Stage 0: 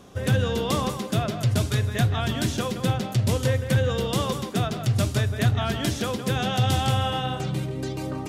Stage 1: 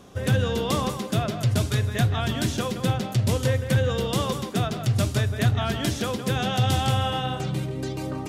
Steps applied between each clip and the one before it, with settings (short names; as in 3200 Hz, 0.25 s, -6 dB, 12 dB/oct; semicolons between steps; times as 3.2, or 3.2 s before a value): nothing audible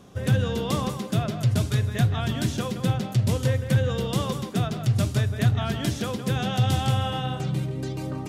bell 150 Hz +5 dB 1.2 oct; gain -3 dB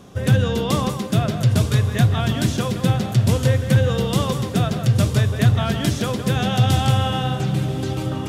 diffused feedback echo 1.069 s, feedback 43%, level -13.5 dB; gain +5.5 dB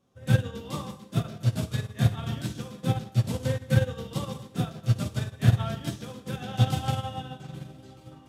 reverb, pre-delay 3 ms, DRR -1 dB; upward expander 2.5:1, over -23 dBFS; gain -5.5 dB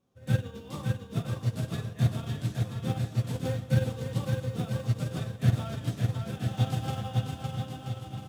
in parallel at -11 dB: sample-rate reducer 2000 Hz; on the sum: bouncing-ball echo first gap 0.56 s, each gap 0.75×, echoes 5; gain -6.5 dB